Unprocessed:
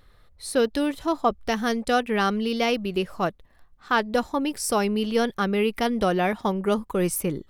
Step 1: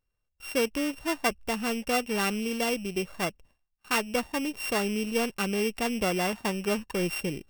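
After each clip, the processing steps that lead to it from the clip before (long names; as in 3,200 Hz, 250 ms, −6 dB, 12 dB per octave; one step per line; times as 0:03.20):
samples sorted by size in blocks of 16 samples
noise gate with hold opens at −42 dBFS
level −5 dB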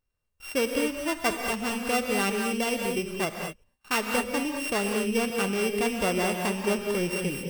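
reverb whose tail is shaped and stops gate 250 ms rising, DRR 3 dB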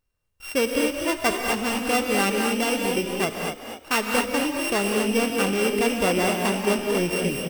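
echo with shifted repeats 248 ms, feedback 39%, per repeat +56 Hz, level −8 dB
level +3.5 dB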